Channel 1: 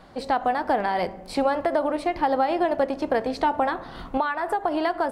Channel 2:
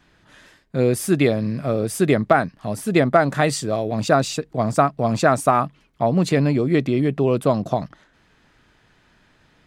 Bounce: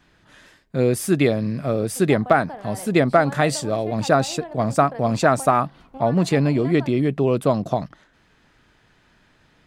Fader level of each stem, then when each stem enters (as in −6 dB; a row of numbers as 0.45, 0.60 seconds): −13.5, −0.5 decibels; 1.80, 0.00 seconds